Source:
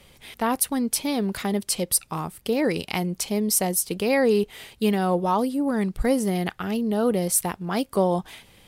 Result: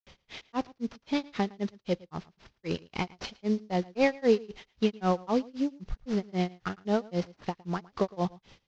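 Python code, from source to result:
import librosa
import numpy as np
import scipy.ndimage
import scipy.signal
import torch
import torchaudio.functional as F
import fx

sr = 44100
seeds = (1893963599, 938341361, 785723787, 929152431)

y = fx.cvsd(x, sr, bps=32000)
y = fx.granulator(y, sr, seeds[0], grain_ms=186.0, per_s=3.8, spray_ms=100.0, spread_st=0)
y = y + 10.0 ** (-22.5 / 20.0) * np.pad(y, (int(111 * sr / 1000.0), 0))[:len(y)]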